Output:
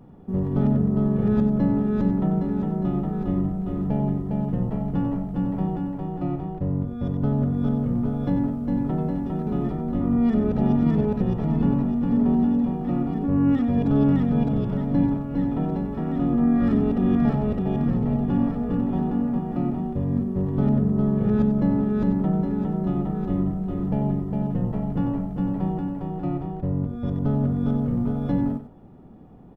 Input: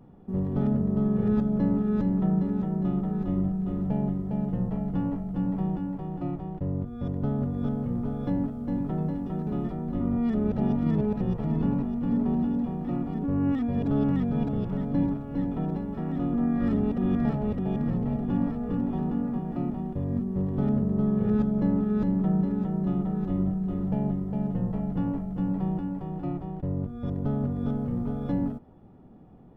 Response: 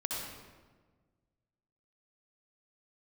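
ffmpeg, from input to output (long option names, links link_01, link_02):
-af "aecho=1:1:93:0.355,volume=4dB"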